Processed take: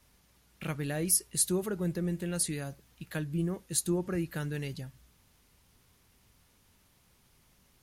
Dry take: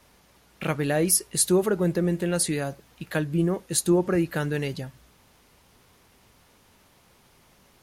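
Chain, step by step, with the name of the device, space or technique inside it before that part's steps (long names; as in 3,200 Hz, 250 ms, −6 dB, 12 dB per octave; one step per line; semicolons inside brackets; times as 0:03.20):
smiley-face EQ (low-shelf EQ 150 Hz +6.5 dB; parametric band 610 Hz −4.5 dB 2.1 octaves; high-shelf EQ 6,200 Hz +5 dB)
level −8.5 dB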